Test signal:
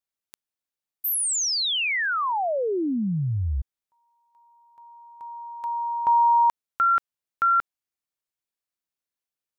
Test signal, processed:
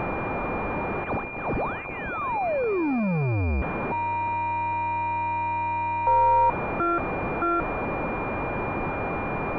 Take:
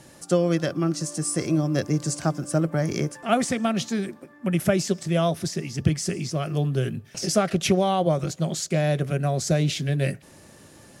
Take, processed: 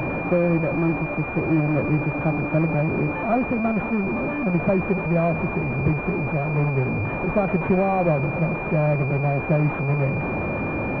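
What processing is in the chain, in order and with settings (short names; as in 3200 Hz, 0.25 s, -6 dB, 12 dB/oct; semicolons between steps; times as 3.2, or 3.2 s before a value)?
delta modulation 32 kbps, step -20.5 dBFS; added harmonics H 5 -9 dB, 7 -22 dB, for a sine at -5 dBFS; pulse-width modulation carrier 2400 Hz; gain -4 dB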